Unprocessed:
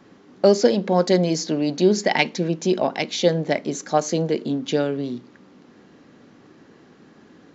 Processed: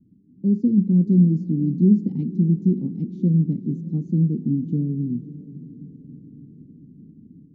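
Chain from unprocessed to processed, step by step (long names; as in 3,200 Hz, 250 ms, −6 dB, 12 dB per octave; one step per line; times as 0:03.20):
inverse Chebyshev low-pass filter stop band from 600 Hz, stop band 50 dB
automatic gain control gain up to 9 dB
feedback delay with all-pass diffusion 565 ms, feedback 57%, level −16 dB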